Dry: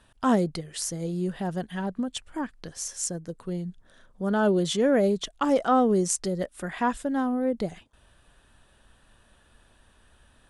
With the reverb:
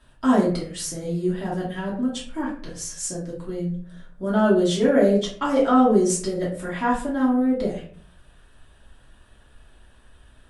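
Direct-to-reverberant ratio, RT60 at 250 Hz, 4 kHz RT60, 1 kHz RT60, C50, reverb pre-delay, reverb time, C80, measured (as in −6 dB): −6.5 dB, 0.70 s, 0.30 s, 0.45 s, 5.5 dB, 3 ms, 0.50 s, 10.5 dB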